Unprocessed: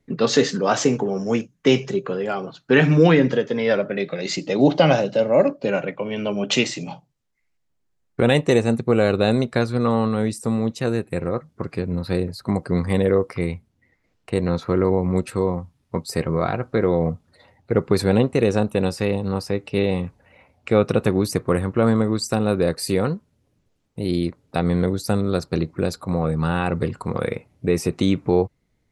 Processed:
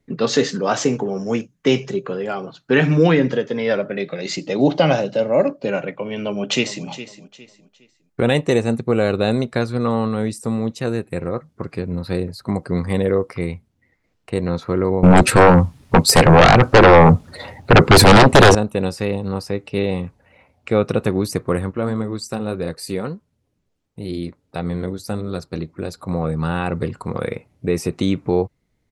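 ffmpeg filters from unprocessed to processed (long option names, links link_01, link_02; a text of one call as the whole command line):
ffmpeg -i in.wav -filter_complex "[0:a]asplit=2[link_01][link_02];[link_02]afade=type=in:start_time=6.19:duration=0.01,afade=type=out:start_time=6.86:duration=0.01,aecho=0:1:410|820|1230:0.199526|0.0598579|0.0179574[link_03];[link_01][link_03]amix=inputs=2:normalize=0,asettb=1/sr,asplit=3[link_04][link_05][link_06];[link_04]atrim=end=15.034[link_07];[link_05]atrim=start=15.03:end=18.55,asetpts=PTS-STARTPTS,afade=type=in:duration=0.004:curve=qsin,afade=type=out:start_time=3.516:duration=0.004:curve=qsin,aeval=exprs='0.631*sin(PI/2*5.62*val(0)/0.631)':channel_layout=same[link_08];[link_06]atrim=start=18.546[link_09];[link_07][link_08]acrossfade=duration=0.004:curve1=hsin:curve2=qsin[link_10];[link_10][link_09]acrossfade=duration=0.004:curve1=qsin:curve2=hsin,asplit=3[link_11][link_12][link_13];[link_11]afade=type=out:start_time=21.7:duration=0.02[link_14];[link_12]flanger=delay=0.7:depth=4.6:regen=-65:speed=1.5:shape=triangular,afade=type=in:start_time=21.7:duration=0.02,afade=type=out:start_time=25.97:duration=0.02[link_15];[link_13]afade=type=in:start_time=25.97:duration=0.02[link_16];[link_14][link_15][link_16]amix=inputs=3:normalize=0" out.wav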